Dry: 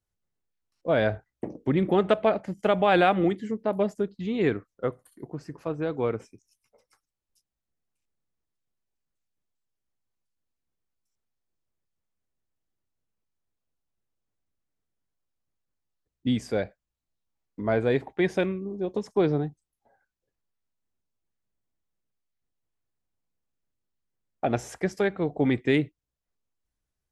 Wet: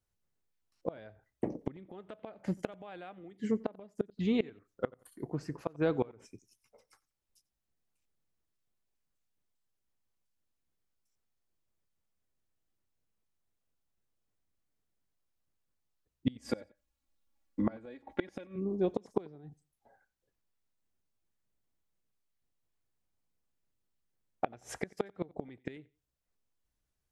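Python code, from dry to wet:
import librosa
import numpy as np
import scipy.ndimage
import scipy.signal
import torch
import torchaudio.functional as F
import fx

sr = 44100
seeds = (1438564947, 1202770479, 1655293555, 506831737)

y = fx.comb(x, sr, ms=3.6, depth=0.95, at=(16.38, 18.56))
y = fx.gate_flip(y, sr, shuts_db=-17.0, range_db=-27)
y = fx.echo_feedback(y, sr, ms=90, feedback_pct=25, wet_db=-24.0)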